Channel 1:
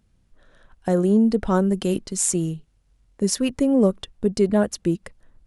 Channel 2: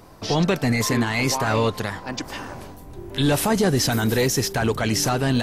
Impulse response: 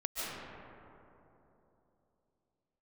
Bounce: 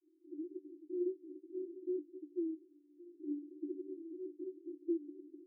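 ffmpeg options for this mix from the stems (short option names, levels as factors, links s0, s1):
-filter_complex "[0:a]alimiter=limit=0.141:level=0:latency=1:release=288,volume=0.501[s0];[1:a]volume=0.2[s1];[s0][s1]amix=inputs=2:normalize=0,asuperpass=centerf=330:order=20:qfactor=3.8"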